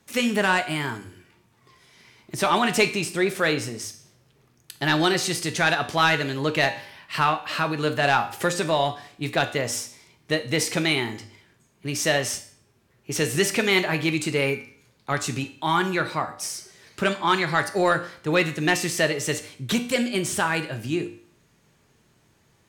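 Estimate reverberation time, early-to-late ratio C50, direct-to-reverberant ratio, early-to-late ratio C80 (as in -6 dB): 0.50 s, 13.5 dB, 7.0 dB, 17.0 dB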